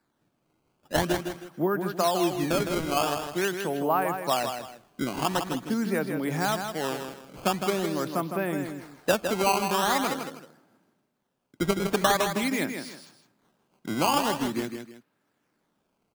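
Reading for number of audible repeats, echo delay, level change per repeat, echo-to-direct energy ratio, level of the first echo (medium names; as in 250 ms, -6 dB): 2, 159 ms, -10.5 dB, -6.5 dB, -7.0 dB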